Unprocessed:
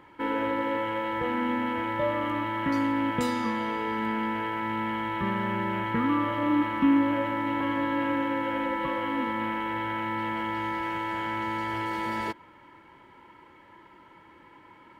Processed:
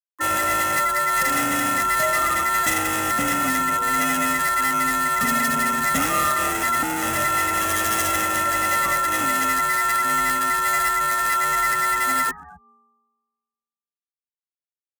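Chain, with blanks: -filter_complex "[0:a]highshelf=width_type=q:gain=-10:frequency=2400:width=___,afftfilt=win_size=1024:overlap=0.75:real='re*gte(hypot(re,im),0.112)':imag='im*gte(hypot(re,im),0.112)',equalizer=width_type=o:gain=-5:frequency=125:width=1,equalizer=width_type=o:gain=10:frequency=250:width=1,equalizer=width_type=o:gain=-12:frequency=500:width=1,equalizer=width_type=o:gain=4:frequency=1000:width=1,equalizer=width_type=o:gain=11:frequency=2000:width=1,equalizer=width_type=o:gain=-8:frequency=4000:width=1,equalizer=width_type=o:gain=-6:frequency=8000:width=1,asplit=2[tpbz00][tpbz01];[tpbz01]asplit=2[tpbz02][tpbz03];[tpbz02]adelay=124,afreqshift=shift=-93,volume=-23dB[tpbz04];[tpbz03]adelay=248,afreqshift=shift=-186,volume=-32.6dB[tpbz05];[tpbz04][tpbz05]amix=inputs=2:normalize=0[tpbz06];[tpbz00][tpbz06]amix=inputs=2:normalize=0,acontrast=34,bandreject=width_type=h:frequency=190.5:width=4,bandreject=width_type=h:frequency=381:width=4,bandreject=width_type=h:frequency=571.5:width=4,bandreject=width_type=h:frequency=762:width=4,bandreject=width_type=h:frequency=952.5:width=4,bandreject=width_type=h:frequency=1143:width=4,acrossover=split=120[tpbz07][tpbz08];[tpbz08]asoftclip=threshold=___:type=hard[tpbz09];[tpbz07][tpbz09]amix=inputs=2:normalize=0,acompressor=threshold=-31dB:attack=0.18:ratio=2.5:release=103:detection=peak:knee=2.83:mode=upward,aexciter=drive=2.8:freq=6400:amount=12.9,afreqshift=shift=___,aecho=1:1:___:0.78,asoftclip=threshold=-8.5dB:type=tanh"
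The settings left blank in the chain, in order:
3, -18dB, 40, 1.5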